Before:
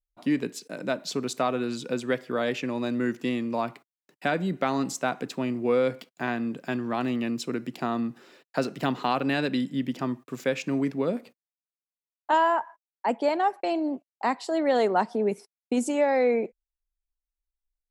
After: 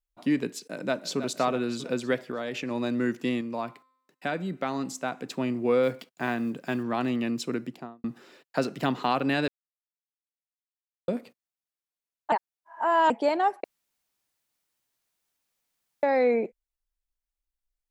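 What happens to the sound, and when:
0:00.61–0:01.25: delay throw 320 ms, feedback 55%, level −11 dB
0:02.21–0:02.71: downward compressor, threshold −28 dBFS
0:03.41–0:05.29: tuned comb filter 260 Hz, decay 0.81 s, mix 40%
0:05.83–0:06.85: one scale factor per block 7 bits
0:07.54–0:08.04: fade out and dull
0:09.48–0:11.08: silence
0:12.32–0:13.10: reverse
0:13.64–0:16.03: fill with room tone

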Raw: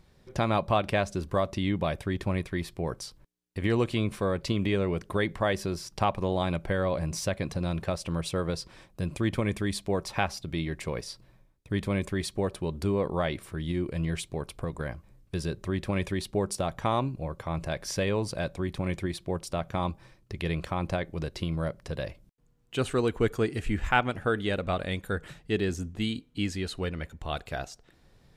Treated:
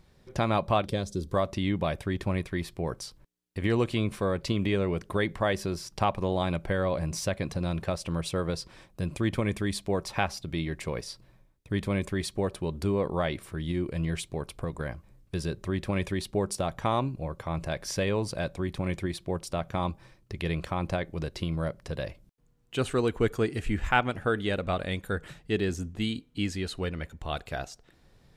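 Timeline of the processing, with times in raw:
0:00.85–0:01.33: gain on a spectral selection 550–3,100 Hz −12 dB

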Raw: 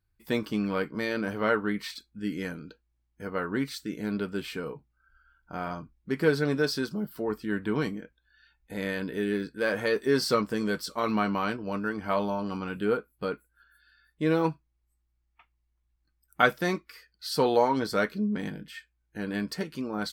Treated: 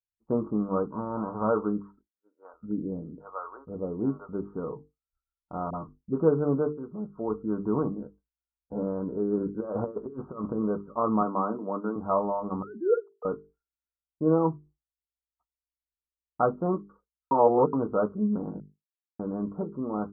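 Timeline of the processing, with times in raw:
0:00.90–0:01.47: spectral envelope flattened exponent 0.3
0:02.06–0:04.29: multiband delay without the direct sound highs, lows 470 ms, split 660 Hz
0:05.70–0:06.19: all-pass dispersion highs, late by 40 ms, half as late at 440 Hz
0:06.73–0:07.40: fade in, from −12.5 dB
0:07.99–0:08.83: double-tracking delay 14 ms −2 dB
0:09.37–0:10.58: compressor whose output falls as the input rises −31 dBFS, ratio −0.5
0:11.21–0:11.96: high-pass filter 180 Hz 24 dB per octave
0:12.62–0:13.25: three sine waves on the formant tracks
0:14.38–0:16.66: high-frequency loss of the air 410 metres
0:17.31–0:17.73: reverse
0:18.60–0:19.19: silence
whole clip: Butterworth low-pass 1,300 Hz 96 dB per octave; mains-hum notches 50/100/150/200/250/300/350/400/450 Hz; downward expander −49 dBFS; level +2.5 dB

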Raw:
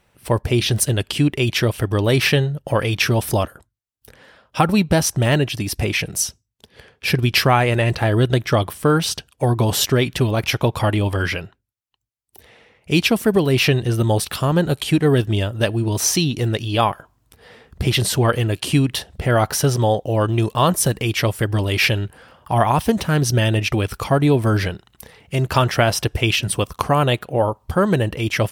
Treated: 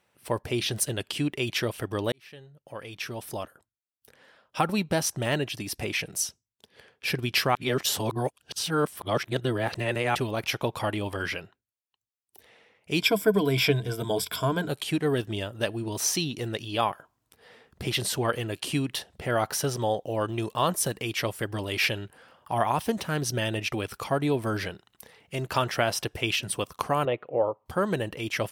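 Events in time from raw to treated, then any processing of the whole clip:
0:02.12–0:04.58: fade in
0:07.55–0:10.15: reverse
0:13.00–0:14.68: EQ curve with evenly spaced ripples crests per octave 1.7, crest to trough 14 dB
0:27.05–0:27.66: loudspeaker in its box 120–2,400 Hz, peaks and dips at 200 Hz −9 dB, 500 Hz +6 dB, 880 Hz −3 dB, 1,600 Hz −9 dB
whole clip: high-pass filter 240 Hz 6 dB per octave; level −7.5 dB

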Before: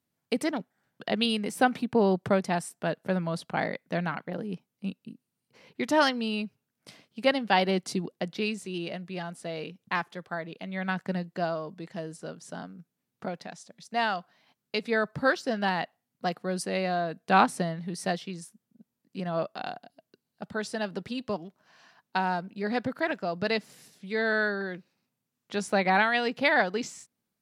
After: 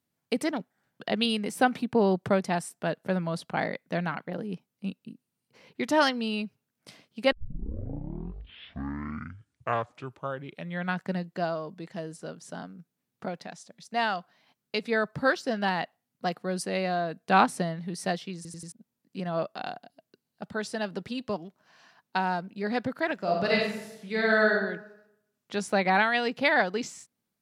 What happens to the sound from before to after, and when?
0:07.32: tape start 3.69 s
0:18.36: stutter in place 0.09 s, 4 plays
0:23.15–0:24.52: thrown reverb, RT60 0.83 s, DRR −2 dB

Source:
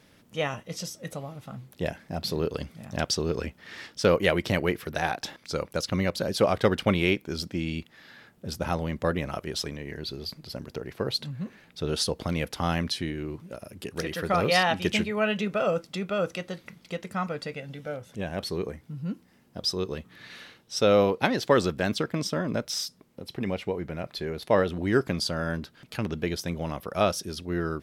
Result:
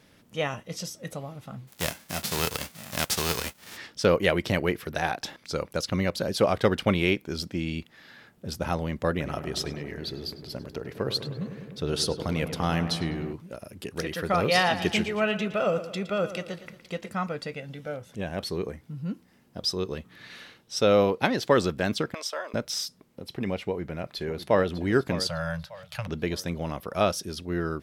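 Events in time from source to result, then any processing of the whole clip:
0:01.67–0:03.76: spectral envelope flattened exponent 0.3
0:09.10–0:13.33: feedback echo with a low-pass in the loop 101 ms, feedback 81%, level −10 dB
0:14.43–0:17.12: repeating echo 115 ms, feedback 48%, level −13 dB
0:22.14–0:22.54: high-pass filter 560 Hz 24 dB per octave
0:23.60–0:24.72: delay throw 600 ms, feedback 40%, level −12.5 dB
0:25.27–0:26.08: elliptic band-stop filter 170–550 Hz

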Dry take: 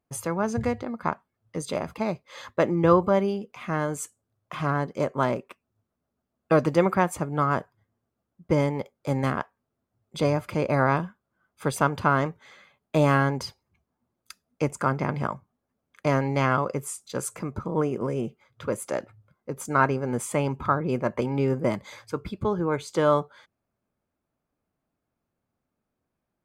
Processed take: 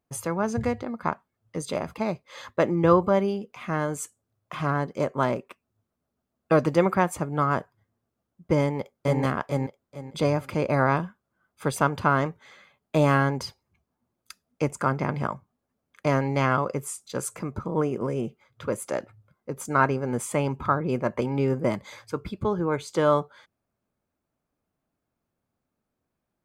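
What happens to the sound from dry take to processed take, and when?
0:08.61–0:09.22: delay throw 440 ms, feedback 25%, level −0.5 dB

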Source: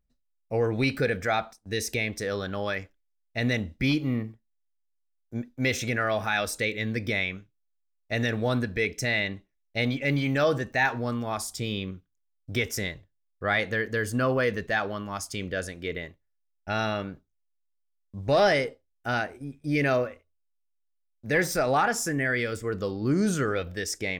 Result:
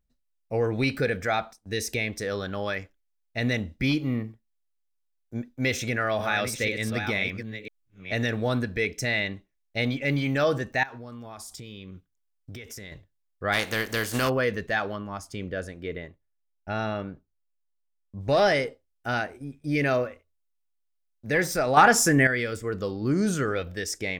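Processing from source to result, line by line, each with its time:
0:05.69–0:08.13: delay that plays each chunk backwards 498 ms, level −7 dB
0:10.83–0:12.92: downward compressor 10 to 1, threshold −37 dBFS
0:13.52–0:14.28: compressing power law on the bin magnitudes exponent 0.53
0:14.96–0:18.21: high-shelf EQ 2,100 Hz −9.5 dB
0:21.77–0:22.27: clip gain +8 dB

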